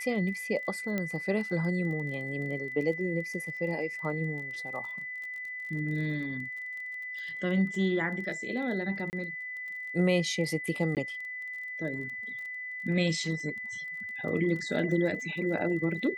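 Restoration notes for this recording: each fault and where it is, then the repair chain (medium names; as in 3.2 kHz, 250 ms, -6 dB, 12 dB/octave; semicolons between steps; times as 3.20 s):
crackle 23 per s -39 dBFS
whine 2 kHz -36 dBFS
0.98 s: pop -18 dBFS
9.10–9.13 s: dropout 29 ms
10.95–10.97 s: dropout 18 ms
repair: de-click; band-stop 2 kHz, Q 30; interpolate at 9.10 s, 29 ms; interpolate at 10.95 s, 18 ms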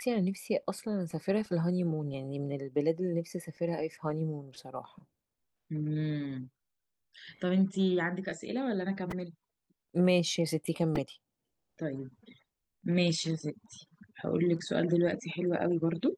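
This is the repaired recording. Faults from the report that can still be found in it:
nothing left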